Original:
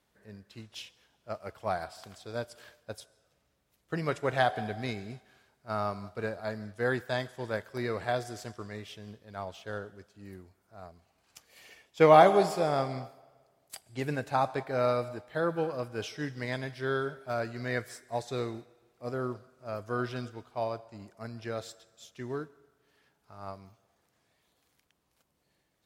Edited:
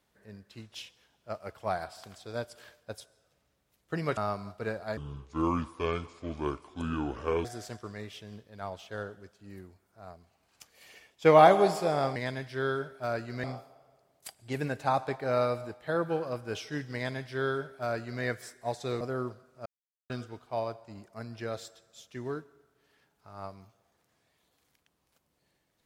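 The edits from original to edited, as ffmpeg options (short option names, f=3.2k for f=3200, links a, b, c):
-filter_complex "[0:a]asplit=9[a][b][c][d][e][f][g][h][i];[a]atrim=end=4.172[j];[b]atrim=start=5.738:end=6.544[k];[c]atrim=start=6.54:end=8.2,asetpts=PTS-STARTPTS,asetrate=29547,aresample=44100[l];[d]atrim=start=8.196:end=12.912[m];[e]atrim=start=16.418:end=17.702[n];[f]atrim=start=12.908:end=18.482[o];[g]atrim=start=19.048:end=19.7,asetpts=PTS-STARTPTS,afade=t=out:st=0.648:d=0.004:c=hsin[p];[h]atrim=start=19.7:end=20.14,asetpts=PTS-STARTPTS,volume=0[q];[i]atrim=start=20.14,asetpts=PTS-STARTPTS,afade=t=in:d=0.004:c=hsin[r];[j][k]acrossfade=d=0.004:c1=hsin:c2=hsin[s];[s][l]acrossfade=d=0.004:c1=hsin:c2=hsin[t];[t][m]acrossfade=d=0.004:c1=hsin:c2=hsin[u];[u][n]acrossfade=d=0.004:c1=hsin:c2=hsin[v];[v][o]acrossfade=d=0.004:c1=hsin:c2=hsin[w];[p][q][r]concat=n=3:v=0:a=1[x];[w][x]acrossfade=d=0.004:c1=hsin:c2=hsin"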